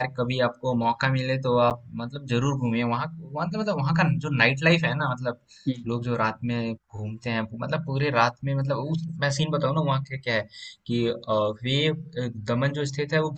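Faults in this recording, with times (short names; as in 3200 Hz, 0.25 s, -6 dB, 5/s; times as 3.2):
1.7–1.71 gap 8.4 ms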